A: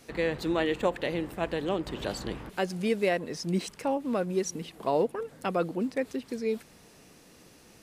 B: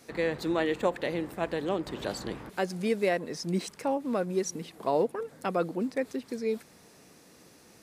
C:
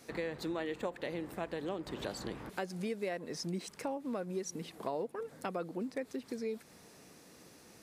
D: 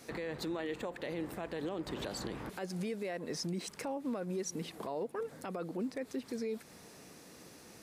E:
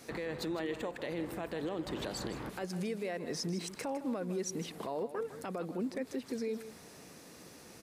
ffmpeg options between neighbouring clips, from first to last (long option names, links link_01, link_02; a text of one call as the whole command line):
ffmpeg -i in.wav -af "highpass=frequency=110:poles=1,equalizer=frequency=2900:width_type=o:width=0.4:gain=-4.5" out.wav
ffmpeg -i in.wav -af "acompressor=threshold=-35dB:ratio=3,volume=-1.5dB" out.wav
ffmpeg -i in.wav -af "alimiter=level_in=8.5dB:limit=-24dB:level=0:latency=1:release=18,volume=-8.5dB,volume=3dB" out.wav
ffmpeg -i in.wav -af "aecho=1:1:157:0.237,volume=1dB" out.wav